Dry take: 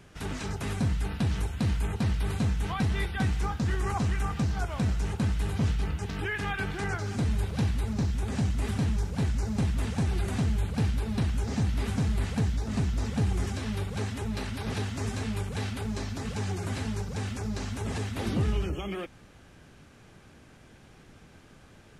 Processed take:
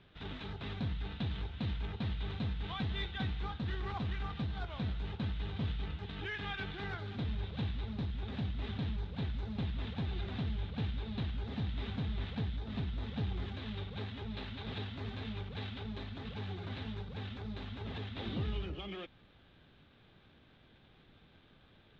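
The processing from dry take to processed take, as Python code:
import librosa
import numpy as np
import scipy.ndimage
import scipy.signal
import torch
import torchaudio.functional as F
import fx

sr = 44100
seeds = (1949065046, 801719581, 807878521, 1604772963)

y = scipy.ndimage.median_filter(x, 9, mode='constant')
y = fx.ladder_lowpass(y, sr, hz=3900.0, resonance_pct=75)
y = F.gain(torch.from_numpy(y), 2.5).numpy()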